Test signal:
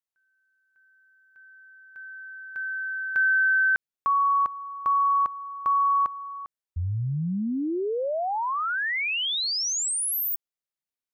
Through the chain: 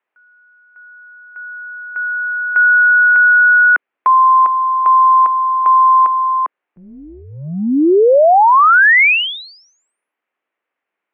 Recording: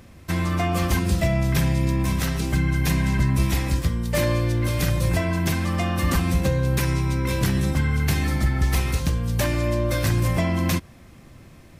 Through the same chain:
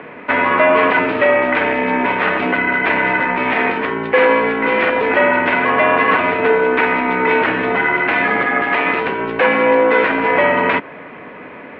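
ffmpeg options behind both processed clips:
-af "apsyclip=27.5dB,highpass=f=370:t=q:w=0.5412,highpass=f=370:t=q:w=1.307,lowpass=f=2.6k:t=q:w=0.5176,lowpass=f=2.6k:t=q:w=0.7071,lowpass=f=2.6k:t=q:w=1.932,afreqshift=-78,volume=-6dB"

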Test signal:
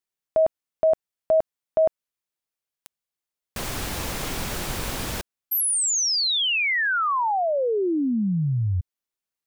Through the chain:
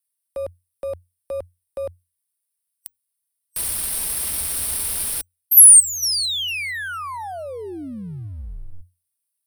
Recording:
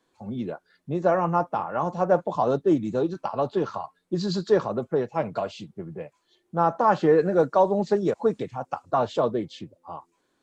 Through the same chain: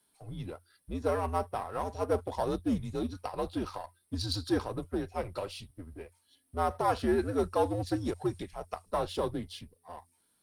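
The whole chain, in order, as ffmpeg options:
-af "aeval=exprs='if(lt(val(0),0),0.708*val(0),val(0))':c=same,crystalizer=i=4:c=0,superequalizer=15b=0.398:16b=3.16,afreqshift=-89,volume=-8dB"

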